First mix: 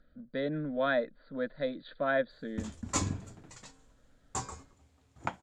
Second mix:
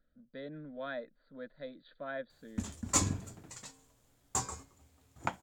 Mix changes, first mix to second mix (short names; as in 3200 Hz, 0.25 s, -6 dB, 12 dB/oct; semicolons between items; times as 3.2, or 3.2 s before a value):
speech -11.5 dB; master: remove air absorption 59 m